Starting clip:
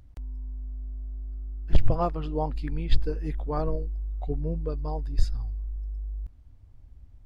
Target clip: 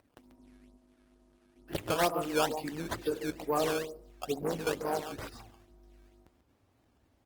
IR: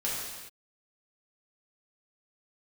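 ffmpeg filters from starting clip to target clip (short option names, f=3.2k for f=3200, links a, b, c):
-filter_complex "[0:a]asettb=1/sr,asplit=3[a][b][c];[a]atrim=end=4.414[d];[b]atrim=start=4.41:end=5.01,asetpts=PTS-STARTPTS,afade=t=in:d=0.004:c=qsin,afade=t=out:st=0.596:d=0.004:c=qsin,aeval=exprs='0.119*(cos(1*acos(clip(val(0)/0.119,-1,1)))-cos(1*PI/2))+0.0119*(cos(6*acos(clip(val(0)/0.119,-1,1)))-cos(6*PI/2))+0.0133*(cos(7*acos(clip(val(0)/0.119,-1,1)))-cos(7*PI/2))+0.000944*(cos(8*acos(clip(val(0)/0.119,-1,1)))-cos(8*PI/2))':c=same[e];[c]atrim=start=5.006[f];[d][e]acrossfade=d=0.004:c1=hsin:c2=qsin[g];[g][f]acrossfade=d=0.004:c1=qsin:c2=hsin,flanger=delay=2.2:depth=9.2:regen=-54:speed=1.7:shape=sinusoidal,highpass=300,asplit=2[h][i];[i]adelay=139.9,volume=-11dB,highshelf=f=4k:g=-3.15[j];[h][j]amix=inputs=2:normalize=0,asplit=2[k][l];[1:a]atrim=start_sample=2205,afade=t=out:st=0.26:d=0.01,atrim=end_sample=11907,highshelf=f=2k:g=-5.5[m];[l][m]afir=irnorm=-1:irlink=0,volume=-22dB[n];[k][n]amix=inputs=2:normalize=0,asoftclip=type=tanh:threshold=-25dB,asplit=3[o][p][q];[o]afade=t=out:st=0.76:d=0.02[r];[p]tiltshelf=f=1.1k:g=-6.5,afade=t=in:st=0.76:d=0.02,afade=t=out:st=1.53:d=0.02[s];[q]afade=t=in:st=1.53:d=0.02[t];[r][s][t]amix=inputs=3:normalize=0,acrusher=samples=13:mix=1:aa=0.000001:lfo=1:lforange=20.8:lforate=2.2,acontrast=61" -ar 48000 -c:a libopus -b:a 24k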